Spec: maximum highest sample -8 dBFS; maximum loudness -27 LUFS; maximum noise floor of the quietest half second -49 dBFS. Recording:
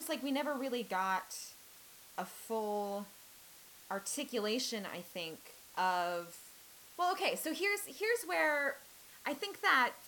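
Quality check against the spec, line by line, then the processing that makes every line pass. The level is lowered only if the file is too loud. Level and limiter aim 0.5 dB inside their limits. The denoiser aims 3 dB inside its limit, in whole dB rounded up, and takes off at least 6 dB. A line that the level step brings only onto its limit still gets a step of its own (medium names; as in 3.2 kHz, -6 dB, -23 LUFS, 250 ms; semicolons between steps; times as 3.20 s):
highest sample -16.0 dBFS: pass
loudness -36.0 LUFS: pass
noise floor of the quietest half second -58 dBFS: pass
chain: none needed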